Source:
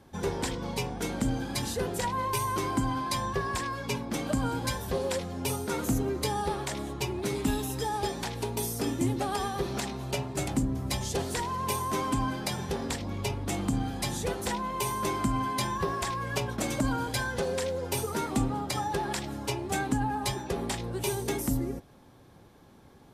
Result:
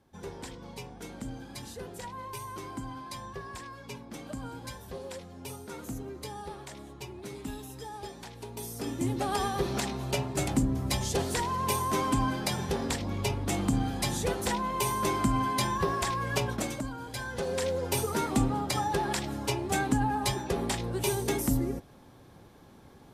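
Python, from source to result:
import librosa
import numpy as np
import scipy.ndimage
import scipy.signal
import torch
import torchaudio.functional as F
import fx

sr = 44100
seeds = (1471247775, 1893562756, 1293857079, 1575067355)

y = fx.gain(x, sr, db=fx.line((8.39, -10.5), (9.37, 1.5), (16.53, 1.5), (16.93, -10.5), (17.68, 1.5)))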